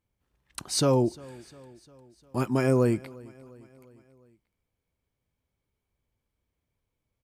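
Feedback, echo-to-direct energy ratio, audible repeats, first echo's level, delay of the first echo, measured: 57%, -21.0 dB, 3, -22.5 dB, 0.352 s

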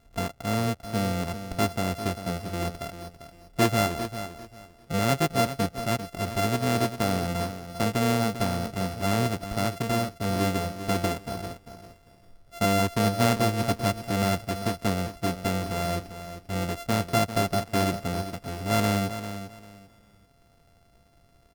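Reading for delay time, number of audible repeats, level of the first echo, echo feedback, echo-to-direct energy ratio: 0.396 s, 2, -11.0 dB, 23%, -11.0 dB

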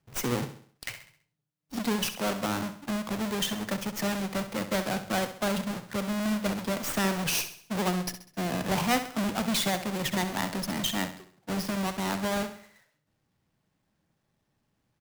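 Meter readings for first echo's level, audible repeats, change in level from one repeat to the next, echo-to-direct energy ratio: -11.0 dB, 4, -7.0 dB, -10.0 dB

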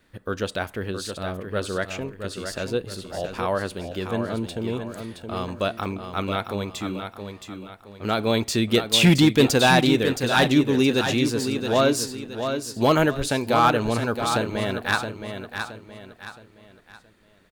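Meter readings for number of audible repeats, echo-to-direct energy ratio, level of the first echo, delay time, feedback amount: 4, -7.0 dB, -7.5 dB, 0.67 s, 37%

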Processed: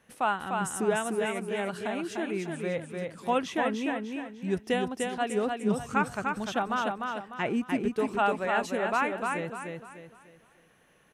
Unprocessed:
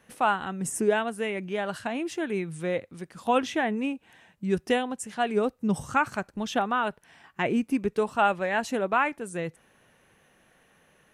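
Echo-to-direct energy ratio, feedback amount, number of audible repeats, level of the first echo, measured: -3.5 dB, 36%, 4, -4.0 dB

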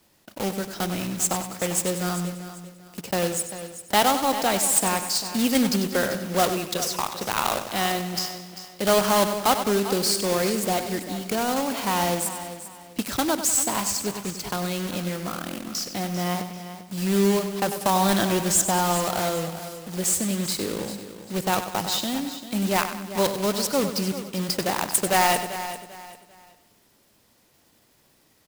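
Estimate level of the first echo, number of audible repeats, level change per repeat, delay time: -10.5 dB, 9, no steady repeat, 96 ms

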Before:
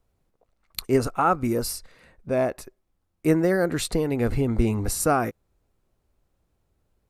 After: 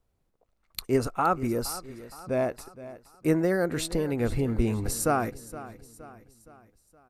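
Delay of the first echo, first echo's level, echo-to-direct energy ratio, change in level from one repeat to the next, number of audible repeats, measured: 0.468 s, -16.0 dB, -15.0 dB, -6.5 dB, 3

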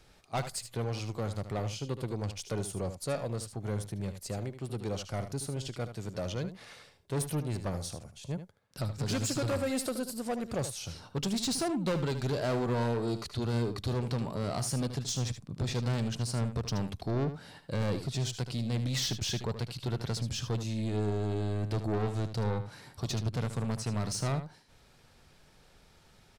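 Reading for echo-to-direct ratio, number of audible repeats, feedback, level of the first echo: -10.5 dB, 1, no steady repeat, -10.5 dB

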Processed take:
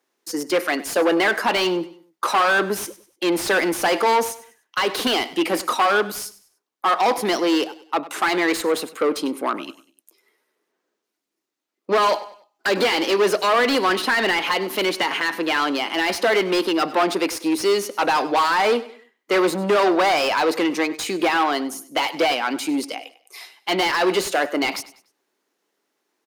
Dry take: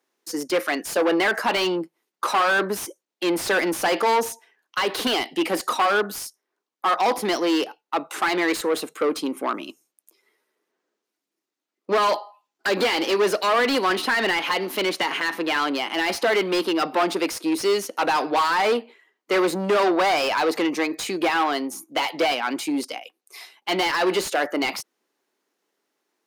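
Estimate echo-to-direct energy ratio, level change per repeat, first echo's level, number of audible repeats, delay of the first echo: -17.0 dB, -9.0 dB, -17.5 dB, 2, 98 ms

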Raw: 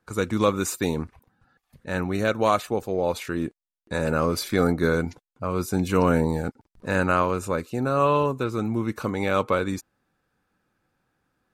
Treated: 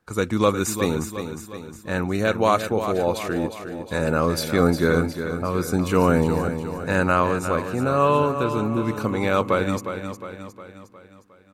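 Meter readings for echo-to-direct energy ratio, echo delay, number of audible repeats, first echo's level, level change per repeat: -7.5 dB, 0.359 s, 5, -9.0 dB, -6.0 dB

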